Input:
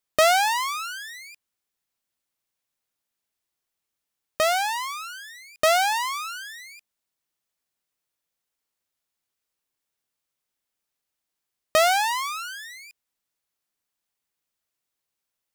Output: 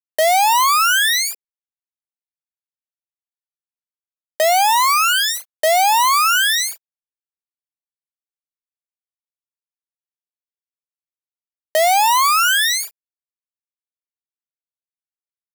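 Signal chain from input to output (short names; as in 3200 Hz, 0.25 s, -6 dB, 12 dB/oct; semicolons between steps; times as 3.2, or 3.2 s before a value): in parallel at 0 dB: compressor, threshold -33 dBFS, peak gain reduction 17 dB; on the sum: fuzz box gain 44 dB, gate -35 dBFS; HPF 450 Hz 24 dB/oct; high shelf 11000 Hz +7.5 dB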